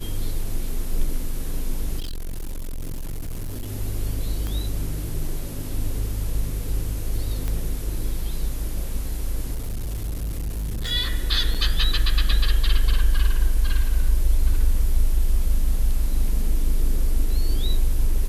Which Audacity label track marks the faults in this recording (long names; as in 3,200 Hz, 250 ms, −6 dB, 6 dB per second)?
1.990000	3.690000	clipping −26 dBFS
4.470000	4.470000	click −17 dBFS
7.480000	7.480000	click −15 dBFS
9.550000	10.920000	clipping −24 dBFS
11.540000	11.550000	drop-out 6.2 ms